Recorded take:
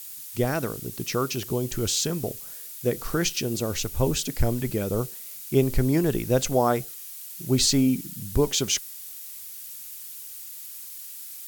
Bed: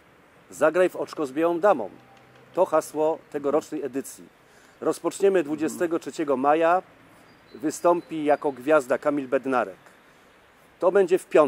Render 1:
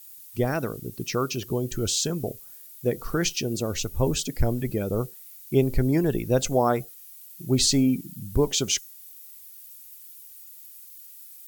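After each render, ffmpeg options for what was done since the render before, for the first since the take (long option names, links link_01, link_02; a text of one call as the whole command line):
ffmpeg -i in.wav -af "afftdn=noise_reduction=11:noise_floor=-40" out.wav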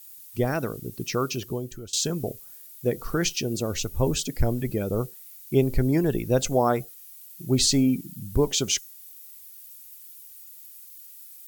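ffmpeg -i in.wav -filter_complex "[0:a]asplit=2[link_01][link_02];[link_01]atrim=end=1.93,asetpts=PTS-STARTPTS,afade=type=out:start_time=1.35:duration=0.58:silence=0.0707946[link_03];[link_02]atrim=start=1.93,asetpts=PTS-STARTPTS,afade=type=in:duration=0.004:curve=hsin:silence=0.0707946[link_04];[link_03][link_04]concat=n=2:v=0:a=1" out.wav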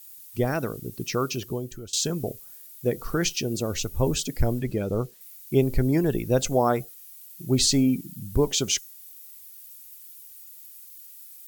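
ffmpeg -i in.wav -filter_complex "[0:a]asettb=1/sr,asplit=3[link_01][link_02][link_03];[link_01]atrim=end=4.594[link_04];[link_02]atrim=start=4.59:end=5.21,asetpts=PTS-STARTPTS,afade=type=in:duration=0.004:curve=qsin,afade=type=out:start_time=0.616:duration=0.004:curve=qsin,acrossover=split=7400[link_05][link_06];[link_06]acompressor=threshold=-51dB:ratio=4:attack=1:release=60[link_07];[link_05][link_07]amix=inputs=2:normalize=0[link_08];[link_03]atrim=start=5.206[link_09];[link_04][link_08]acrossfade=duration=0.004:curve1=hsin:curve2=qsin[link_10];[link_10][link_09]acrossfade=duration=0.004:curve1=qsin:curve2=hsin" out.wav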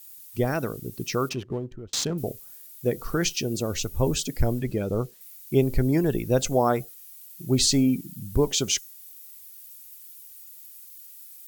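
ffmpeg -i in.wav -filter_complex "[0:a]asettb=1/sr,asplit=3[link_01][link_02][link_03];[link_01]atrim=end=1.294[link_04];[link_02]atrim=start=1.29:end=2.18,asetpts=PTS-STARTPTS,afade=type=in:duration=0.004:curve=qsin,afade=type=out:start_time=0.886:duration=0.004:curve=qsin,adynamicsmooth=sensitivity=7:basefreq=1100[link_05];[link_03]atrim=start=2.176[link_06];[link_04][link_05]acrossfade=duration=0.004:curve1=hsin:curve2=qsin[link_07];[link_07][link_06]acrossfade=duration=0.004:curve1=qsin:curve2=hsin" out.wav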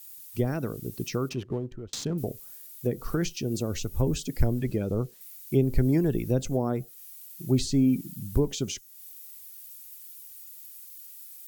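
ffmpeg -i in.wav -filter_complex "[0:a]acrossover=split=390[link_01][link_02];[link_02]acompressor=threshold=-35dB:ratio=4[link_03];[link_01][link_03]amix=inputs=2:normalize=0" out.wav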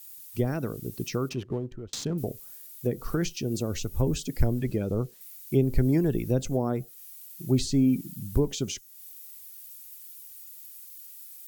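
ffmpeg -i in.wav -af anull out.wav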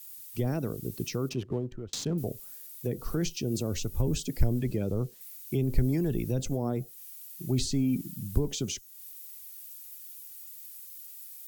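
ffmpeg -i in.wav -filter_complex "[0:a]acrossover=split=120|1100|2100[link_01][link_02][link_03][link_04];[link_02]alimiter=limit=-22.5dB:level=0:latency=1:release=14[link_05];[link_03]acompressor=threshold=-59dB:ratio=6[link_06];[link_01][link_05][link_06][link_04]amix=inputs=4:normalize=0" out.wav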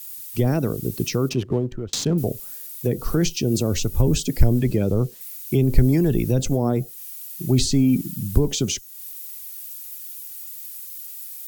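ffmpeg -i in.wav -af "volume=9.5dB,alimiter=limit=-3dB:level=0:latency=1" out.wav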